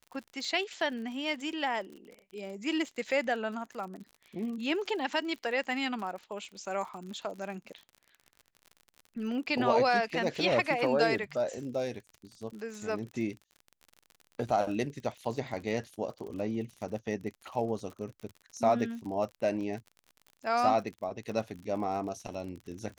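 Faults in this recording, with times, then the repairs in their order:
surface crackle 48 per second −40 dBFS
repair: click removal

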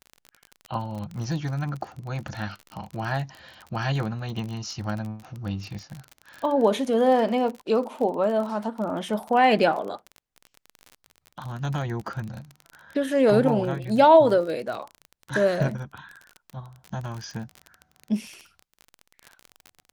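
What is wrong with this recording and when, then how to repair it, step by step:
surface crackle 33 per second −31 dBFS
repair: click removal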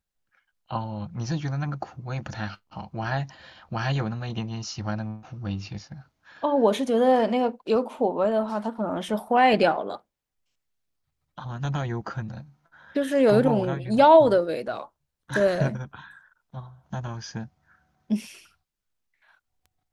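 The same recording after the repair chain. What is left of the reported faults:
none of them is left

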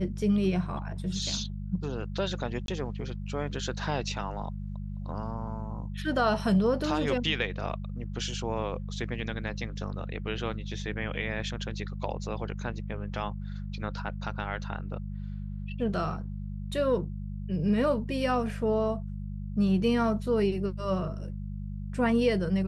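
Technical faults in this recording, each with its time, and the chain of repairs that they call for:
mains hum 50 Hz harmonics 4 −36 dBFS
0:02.66–0:02.68: drop-out 22 ms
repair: hum removal 50 Hz, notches 4
repair the gap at 0:02.66, 22 ms

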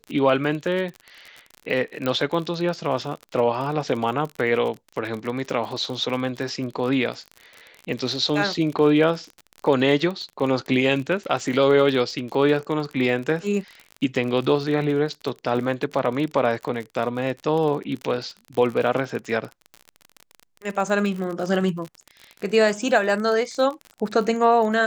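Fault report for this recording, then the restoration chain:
surface crackle 39 per second −29 dBFS
0:02.06: click −12 dBFS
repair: click removal

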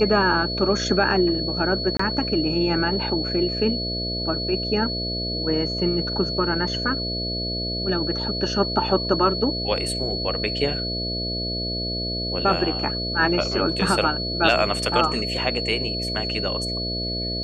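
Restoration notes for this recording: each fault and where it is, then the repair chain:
mains buzz 60 Hz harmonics 11 −30 dBFS
whistle 4,400 Hz −27 dBFS
0:01.97–0:01.99: drop-out 24 ms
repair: hum removal 60 Hz, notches 11
notch filter 4,400 Hz, Q 30
repair the gap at 0:01.97, 24 ms

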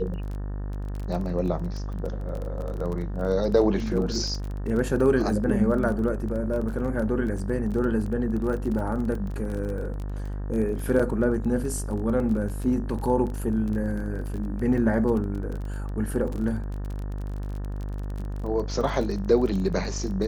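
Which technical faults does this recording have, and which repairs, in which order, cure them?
mains buzz 50 Hz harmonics 37 −31 dBFS
surface crackle 25 per second −31 dBFS
0:10.99–0:11.00: drop-out 5.1 ms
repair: click removal
hum removal 50 Hz, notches 37
repair the gap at 0:10.99, 5.1 ms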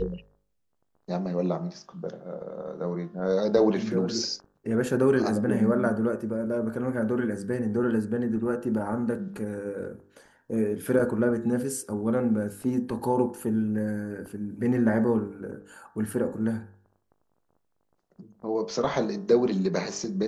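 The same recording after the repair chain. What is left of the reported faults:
none of them is left

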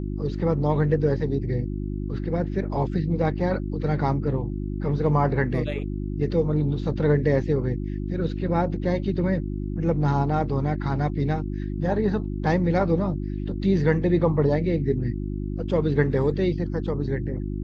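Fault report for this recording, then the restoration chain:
mains hum 50 Hz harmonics 7 −29 dBFS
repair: hum removal 50 Hz, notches 7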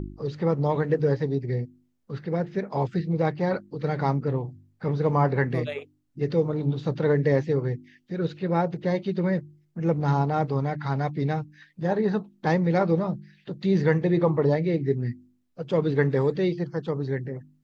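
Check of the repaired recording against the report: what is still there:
none of them is left

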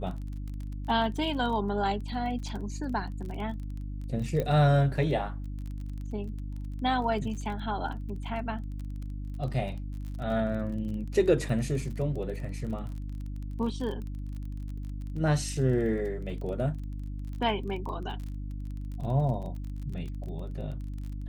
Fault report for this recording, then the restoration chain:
surface crackle 27 per second −37 dBFS
mains hum 50 Hz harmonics 6 −36 dBFS
0:04.40: click −18 dBFS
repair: click removal
hum removal 50 Hz, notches 6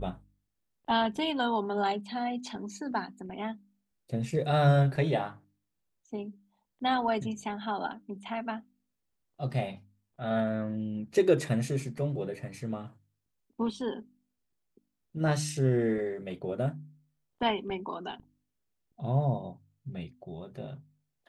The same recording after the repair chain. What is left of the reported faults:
none of them is left

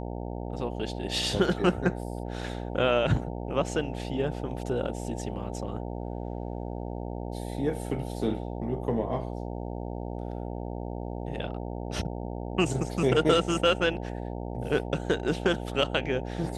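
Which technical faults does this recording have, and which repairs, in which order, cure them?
mains buzz 60 Hz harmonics 15 −35 dBFS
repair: hum removal 60 Hz, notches 15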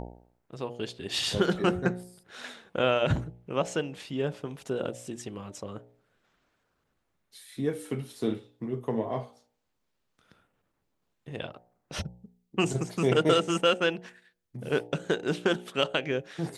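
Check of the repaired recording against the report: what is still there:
none of them is left

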